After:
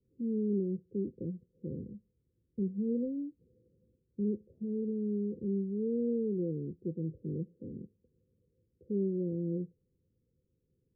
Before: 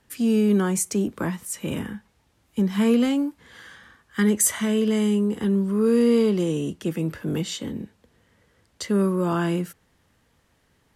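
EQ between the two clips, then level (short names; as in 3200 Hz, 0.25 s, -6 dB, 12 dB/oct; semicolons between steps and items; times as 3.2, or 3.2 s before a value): rippled Chebyshev low-pass 530 Hz, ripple 6 dB; -8.0 dB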